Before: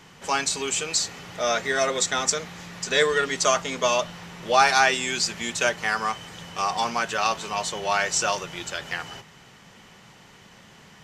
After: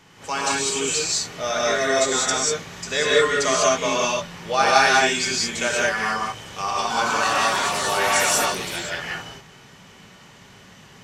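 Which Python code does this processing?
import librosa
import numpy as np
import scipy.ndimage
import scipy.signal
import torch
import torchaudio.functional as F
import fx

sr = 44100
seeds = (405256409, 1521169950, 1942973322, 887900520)

y = fx.echo_pitch(x, sr, ms=323, semitones=4, count=2, db_per_echo=-3.0, at=(6.57, 8.86))
y = fx.rev_gated(y, sr, seeds[0], gate_ms=220, shape='rising', drr_db=-4.5)
y = y * 10.0 ** (-3.0 / 20.0)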